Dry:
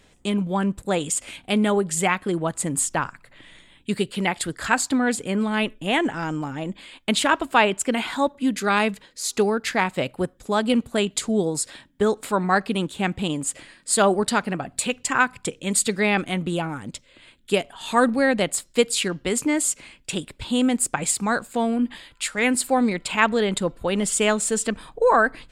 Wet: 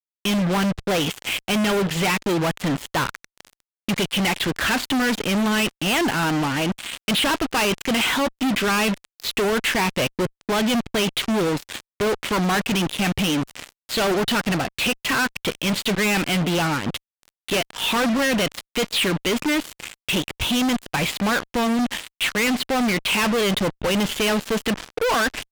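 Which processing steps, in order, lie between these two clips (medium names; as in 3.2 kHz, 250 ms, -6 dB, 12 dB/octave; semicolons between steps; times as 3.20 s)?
four-pole ladder low-pass 3.5 kHz, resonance 50%; fuzz box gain 47 dB, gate -45 dBFS; trim -5.5 dB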